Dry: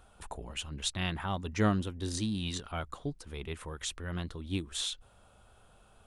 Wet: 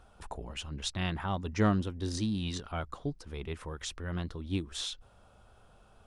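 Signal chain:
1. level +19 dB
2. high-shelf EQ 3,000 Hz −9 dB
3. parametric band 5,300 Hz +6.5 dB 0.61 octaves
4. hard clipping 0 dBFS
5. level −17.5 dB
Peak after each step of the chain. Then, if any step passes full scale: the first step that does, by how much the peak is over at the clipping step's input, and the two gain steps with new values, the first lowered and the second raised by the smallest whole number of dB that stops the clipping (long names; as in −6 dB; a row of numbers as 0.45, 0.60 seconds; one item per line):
+3.0, +3.0, +3.0, 0.0, −17.5 dBFS
step 1, 3.0 dB
step 1 +16 dB, step 5 −14.5 dB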